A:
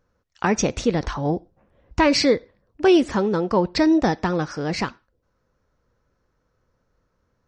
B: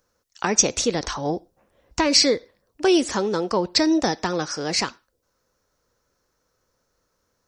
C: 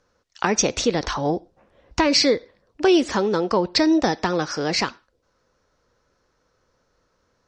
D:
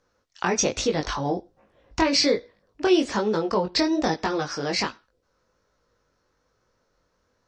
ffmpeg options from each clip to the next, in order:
-filter_complex "[0:a]acrossover=split=410[s0][s1];[s1]acompressor=threshold=0.1:ratio=6[s2];[s0][s2]amix=inputs=2:normalize=0,bass=f=250:g=-8,treble=f=4000:g=14"
-filter_complex "[0:a]lowpass=4600,asplit=2[s0][s1];[s1]acompressor=threshold=0.0355:ratio=6,volume=0.841[s2];[s0][s2]amix=inputs=2:normalize=0"
-af "flanger=delay=18.5:depth=3.5:speed=1.2"

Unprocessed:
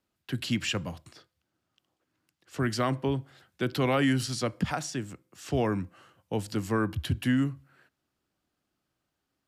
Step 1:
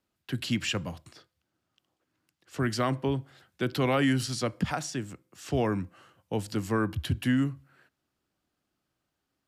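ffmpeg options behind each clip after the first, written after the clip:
-af anull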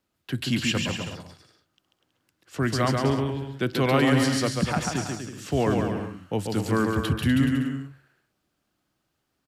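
-af "aecho=1:1:140|245|323.8|382.8|427.1:0.631|0.398|0.251|0.158|0.1,volume=1.41"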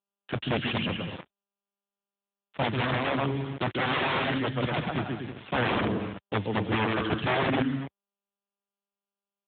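-af "aeval=exprs='(mod(8.41*val(0)+1,2)-1)/8.41':c=same,acrusher=bits=5:mix=0:aa=0.000001" -ar 8000 -c:a libopencore_amrnb -b:a 10200

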